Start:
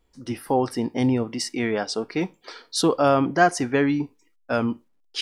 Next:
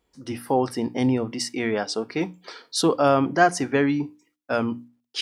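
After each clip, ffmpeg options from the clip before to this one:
-af "highpass=63,bandreject=f=60:t=h:w=6,bandreject=f=120:t=h:w=6,bandreject=f=180:t=h:w=6,bandreject=f=240:t=h:w=6,bandreject=f=300:t=h:w=6"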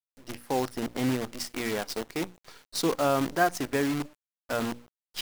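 -af "acrusher=bits=5:dc=4:mix=0:aa=0.000001,volume=0.473"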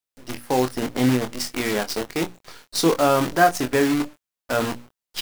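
-filter_complex "[0:a]asplit=2[s0][s1];[s1]adelay=24,volume=0.422[s2];[s0][s2]amix=inputs=2:normalize=0,volume=2.11"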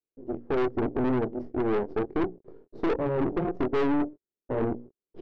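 -af "aeval=exprs='0.168*(abs(mod(val(0)/0.168+3,4)-2)-1)':c=same,lowpass=f=390:t=q:w=4,aeval=exprs='(tanh(14.1*val(0)+0.55)-tanh(0.55))/14.1':c=same"

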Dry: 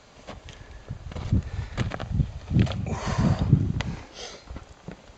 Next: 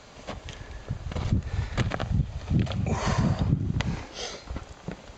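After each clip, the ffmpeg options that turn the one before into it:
-af "acompressor=threshold=0.0631:ratio=6,volume=1.5"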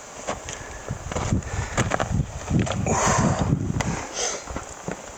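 -filter_complex "[0:a]aexciter=amount=14:drive=5.3:freq=6400,asplit=2[s0][s1];[s1]highpass=f=720:p=1,volume=5.01,asoftclip=type=tanh:threshold=0.562[s2];[s0][s2]amix=inputs=2:normalize=0,lowpass=f=1400:p=1,volume=0.501,volume=1.68"

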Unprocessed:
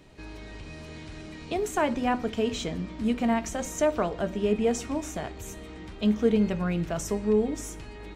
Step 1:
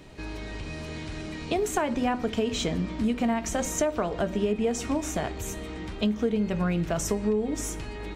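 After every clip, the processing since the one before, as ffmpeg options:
-af "acompressor=threshold=0.0398:ratio=6,volume=1.88"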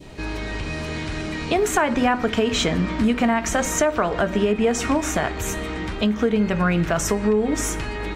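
-filter_complex "[0:a]adynamicequalizer=threshold=0.00501:dfrequency=1500:dqfactor=0.89:tfrequency=1500:tqfactor=0.89:attack=5:release=100:ratio=0.375:range=4:mode=boostabove:tftype=bell,asplit=2[s0][s1];[s1]alimiter=limit=0.106:level=0:latency=1:release=223,volume=1.33[s2];[s0][s2]amix=inputs=2:normalize=0"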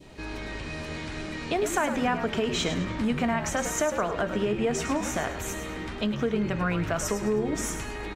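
-filter_complex "[0:a]lowshelf=f=170:g=-3,asplit=5[s0][s1][s2][s3][s4];[s1]adelay=105,afreqshift=-71,volume=0.355[s5];[s2]adelay=210,afreqshift=-142,volume=0.127[s6];[s3]adelay=315,afreqshift=-213,volume=0.0462[s7];[s4]adelay=420,afreqshift=-284,volume=0.0166[s8];[s0][s5][s6][s7][s8]amix=inputs=5:normalize=0,volume=0.473"

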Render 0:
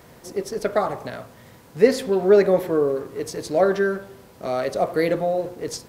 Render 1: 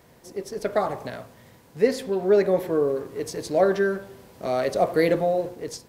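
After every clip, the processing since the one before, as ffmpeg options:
-af "equalizer=f=1300:t=o:w=0.28:g=-3.5,dynaudnorm=f=270:g=5:m=3.76,volume=0.473"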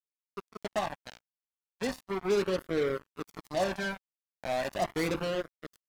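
-af "acrusher=bits=3:mix=0:aa=0.5,flanger=delay=0.5:depth=1:regen=-24:speed=0.36:shape=triangular,volume=0.596"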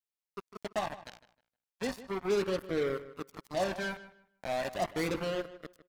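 -filter_complex "[0:a]asplit=2[s0][s1];[s1]adelay=155,lowpass=f=3800:p=1,volume=0.178,asplit=2[s2][s3];[s3]adelay=155,lowpass=f=3800:p=1,volume=0.24,asplit=2[s4][s5];[s5]adelay=155,lowpass=f=3800:p=1,volume=0.24[s6];[s0][s2][s4][s6]amix=inputs=4:normalize=0,volume=0.794"

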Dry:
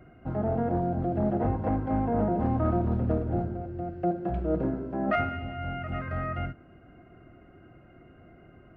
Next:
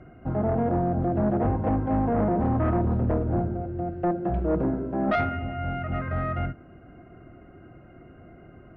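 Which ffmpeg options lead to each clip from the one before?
-af "aemphasis=mode=reproduction:type=75fm,aeval=exprs='0.224*sin(PI/2*1.78*val(0)/0.224)':c=same,volume=0.562"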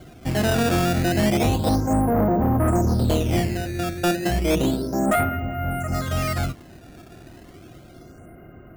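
-af "acrusher=samples=12:mix=1:aa=0.000001:lfo=1:lforange=19.2:lforate=0.32,volume=1.58"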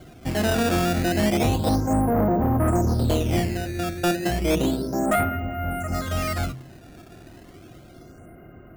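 -af "bandreject=f=65.77:t=h:w=4,bandreject=f=131.54:t=h:w=4,bandreject=f=197.31:t=h:w=4,volume=0.891"

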